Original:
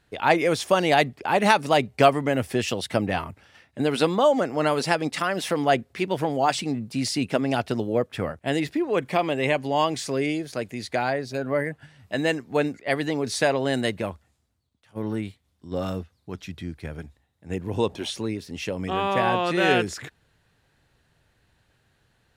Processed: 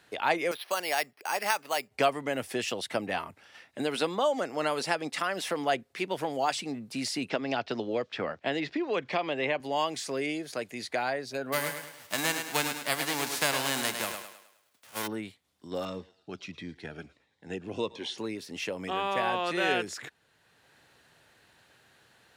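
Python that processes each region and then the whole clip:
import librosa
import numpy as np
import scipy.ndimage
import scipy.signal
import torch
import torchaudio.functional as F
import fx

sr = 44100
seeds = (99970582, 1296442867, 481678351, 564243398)

y = fx.chain(x, sr, fx.highpass(hz=1100.0, slope=6),
    fx.resample_bad(factor=6, down='filtered', up='hold'), at=(0.51, 1.91))
y = fx.chain(y, sr, fx.lowpass(hz=5400.0, slope=24),
    fx.band_squash(depth_pct=70), at=(7.29, 9.6))
y = fx.envelope_flatten(y, sr, power=0.3, at=(11.52, 15.06), fade=0.02)
y = fx.echo_thinned(y, sr, ms=104, feedback_pct=37, hz=170.0, wet_db=-7, at=(11.52, 15.06), fade=0.02)
y = fx.chain(y, sr, fx.lowpass(hz=5000.0, slope=12),
    fx.echo_thinned(ms=109, feedback_pct=41, hz=590.0, wet_db=-19),
    fx.notch_cascade(direction='falling', hz=1.5), at=(15.85, 18.18))
y = fx.highpass(y, sr, hz=410.0, slope=6)
y = fx.band_squash(y, sr, depth_pct=40)
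y = y * 10.0 ** (-4.5 / 20.0)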